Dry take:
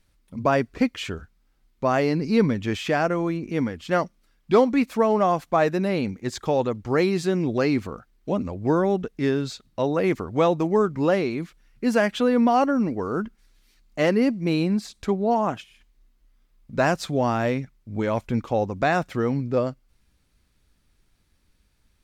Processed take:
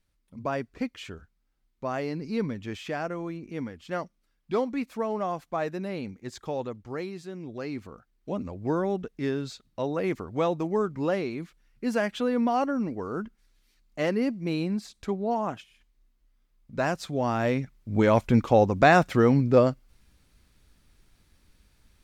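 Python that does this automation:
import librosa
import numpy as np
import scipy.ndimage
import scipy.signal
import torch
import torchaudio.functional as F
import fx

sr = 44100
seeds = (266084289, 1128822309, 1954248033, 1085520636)

y = fx.gain(x, sr, db=fx.line((6.68, -9.5), (7.26, -16.5), (8.44, -6.0), (17.1, -6.0), (17.99, 4.0)))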